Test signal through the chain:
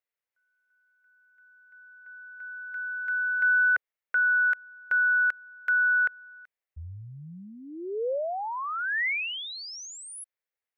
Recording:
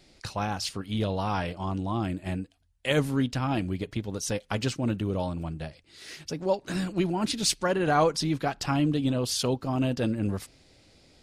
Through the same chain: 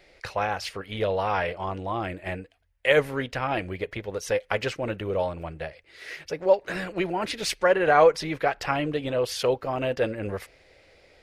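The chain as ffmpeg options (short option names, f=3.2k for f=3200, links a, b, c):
-af "equalizer=f=125:t=o:w=1:g=-5,equalizer=f=250:t=o:w=1:g=-10,equalizer=f=500:t=o:w=1:g=10,equalizer=f=2k:t=o:w=1:g=10,equalizer=f=4k:t=o:w=1:g=-3,equalizer=f=8k:t=o:w=1:g=-7"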